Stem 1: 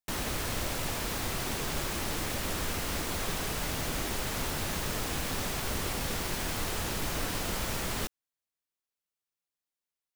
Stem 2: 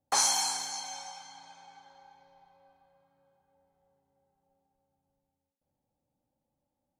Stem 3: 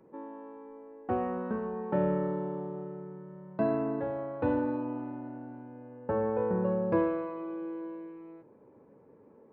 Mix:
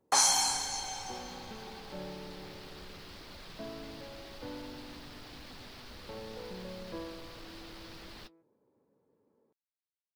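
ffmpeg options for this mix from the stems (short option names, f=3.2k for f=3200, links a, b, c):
-filter_complex "[0:a]highshelf=f=5.9k:t=q:w=3:g=-9,asoftclip=type=hard:threshold=-30dB,flanger=delay=3.3:depth=6.5:regen=-45:speed=1.9:shape=sinusoidal,adelay=200,volume=-11dB[a];[1:a]volume=1dB[b];[2:a]volume=-15.5dB[c];[a][b][c]amix=inputs=3:normalize=0"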